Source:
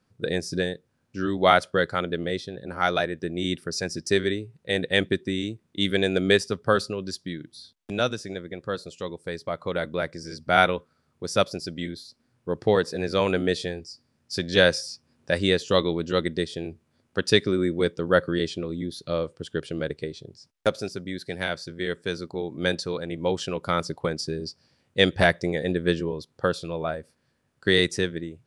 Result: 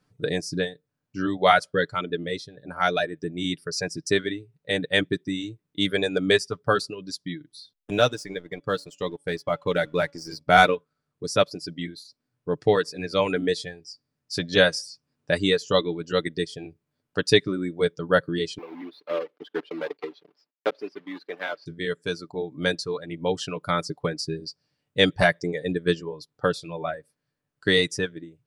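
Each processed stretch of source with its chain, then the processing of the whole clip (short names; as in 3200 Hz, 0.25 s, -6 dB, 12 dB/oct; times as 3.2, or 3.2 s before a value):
7.91–10.75 de-hum 283.5 Hz, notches 12 + sample leveller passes 1
18.58–21.66 block floating point 3-bit + HPF 270 Hz 24 dB/oct + air absorption 340 m
whole clip: reverb removal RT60 1.6 s; comb 6.8 ms, depth 49%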